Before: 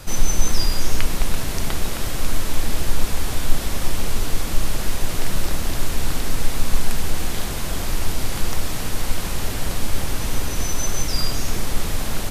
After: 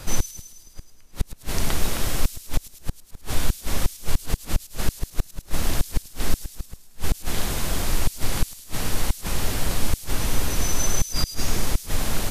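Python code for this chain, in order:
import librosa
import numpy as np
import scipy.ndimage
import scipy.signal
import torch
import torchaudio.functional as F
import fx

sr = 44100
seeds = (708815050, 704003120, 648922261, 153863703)

y = fx.gate_flip(x, sr, shuts_db=-7.0, range_db=-35)
y = fx.echo_wet_highpass(y, sr, ms=106, feedback_pct=64, hz=5200.0, wet_db=-6)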